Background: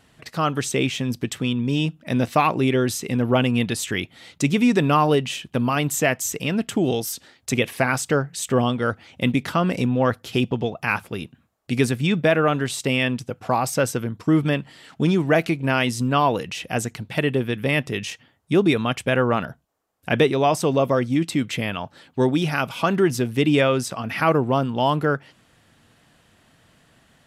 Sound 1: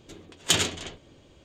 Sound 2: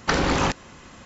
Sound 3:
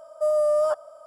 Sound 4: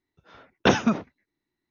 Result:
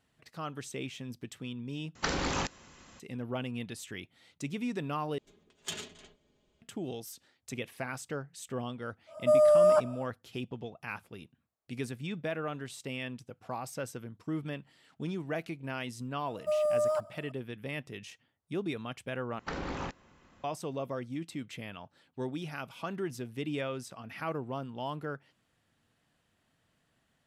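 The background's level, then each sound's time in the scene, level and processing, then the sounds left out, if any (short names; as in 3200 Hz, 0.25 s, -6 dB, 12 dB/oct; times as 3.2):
background -17 dB
1.95 replace with 2 -11 dB + high shelf 3500 Hz +6.5 dB
5.18 replace with 1 -17.5 dB + comb 4.8 ms, depth 59%
9.06 add 3, fades 0.10 s
16.26 add 3 -7 dB + block floating point 7-bit
19.39 replace with 2 -15 dB + high shelf 4300 Hz -10 dB
not used: 4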